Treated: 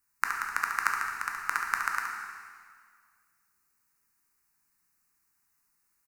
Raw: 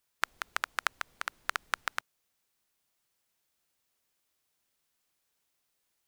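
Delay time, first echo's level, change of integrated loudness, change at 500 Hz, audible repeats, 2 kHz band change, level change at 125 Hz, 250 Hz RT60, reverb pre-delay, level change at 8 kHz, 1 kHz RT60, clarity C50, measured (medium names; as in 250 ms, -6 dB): 70 ms, -6.5 dB, +4.5 dB, -6.5 dB, 1, +5.0 dB, no reading, 1.9 s, 6 ms, +3.5 dB, 1.9 s, 1.0 dB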